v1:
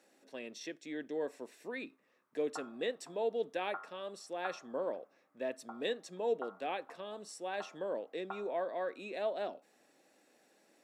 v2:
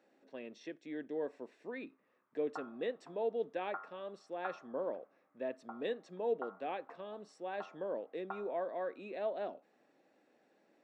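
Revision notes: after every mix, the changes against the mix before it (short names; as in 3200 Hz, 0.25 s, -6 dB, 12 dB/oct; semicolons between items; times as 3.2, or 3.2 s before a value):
speech: add tape spacing loss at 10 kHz 24 dB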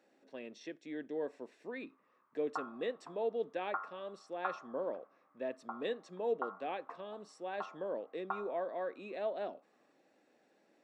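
background: add bell 1100 Hz +9 dB 0.63 oct; master: add high shelf 4900 Hz +6.5 dB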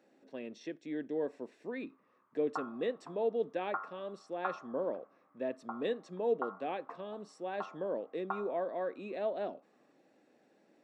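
master: add low shelf 390 Hz +7.5 dB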